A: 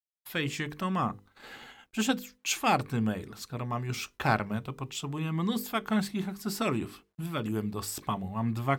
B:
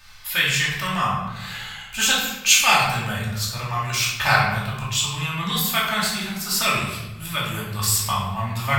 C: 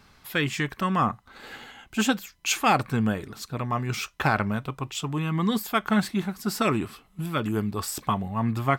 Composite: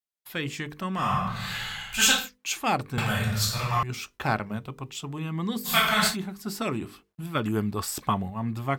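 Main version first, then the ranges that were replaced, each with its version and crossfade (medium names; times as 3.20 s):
A
1.05–2.18 s: from B, crossfade 0.24 s
2.98–3.83 s: from B
5.69–6.12 s: from B, crossfade 0.10 s
7.35–8.30 s: from C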